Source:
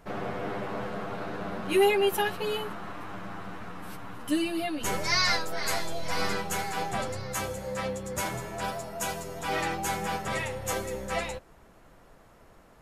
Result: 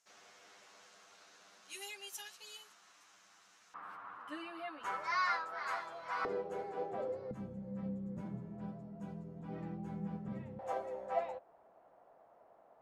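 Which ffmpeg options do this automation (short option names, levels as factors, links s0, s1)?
-af "asetnsamples=n=441:p=0,asendcmd='3.74 bandpass f 1200;6.25 bandpass f 460;7.31 bandpass f 190;10.59 bandpass f 700',bandpass=f=6400:t=q:w=3:csg=0"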